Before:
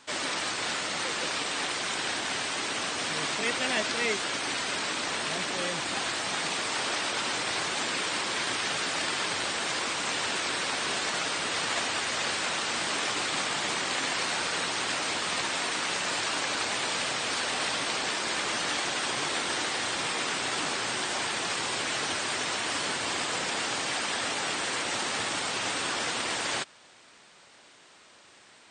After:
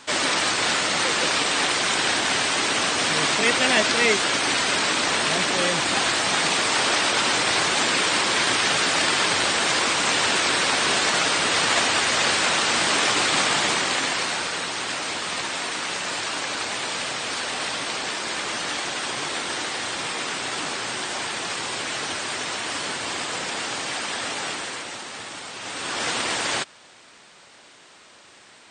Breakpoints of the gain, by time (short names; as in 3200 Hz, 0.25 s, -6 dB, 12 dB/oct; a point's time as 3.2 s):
13.55 s +9 dB
14.6 s +2 dB
24.47 s +2 dB
25.03 s -5 dB
25.56 s -5 dB
26.08 s +5.5 dB